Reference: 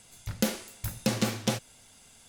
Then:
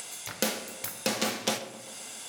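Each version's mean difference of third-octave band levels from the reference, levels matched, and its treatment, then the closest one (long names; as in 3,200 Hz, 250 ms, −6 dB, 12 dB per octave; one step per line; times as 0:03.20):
9.0 dB: high-pass filter 370 Hz 12 dB per octave
upward compression, threshold −33 dBFS
on a send: feedback echo with a low-pass in the loop 131 ms, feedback 66%, low-pass 2,000 Hz, level −14 dB
on the sum: rectangular room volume 340 cubic metres, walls mixed, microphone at 0.42 metres
level +2.5 dB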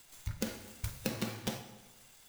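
5.5 dB: spectral dynamics exaggerated over time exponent 1.5
downward compressor 6 to 1, threshold −43 dBFS, peak gain reduction 19.5 dB
dense smooth reverb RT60 1.1 s, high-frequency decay 0.85×, pre-delay 0 ms, DRR 6 dB
converter with an unsteady clock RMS 0.023 ms
level +8.5 dB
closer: second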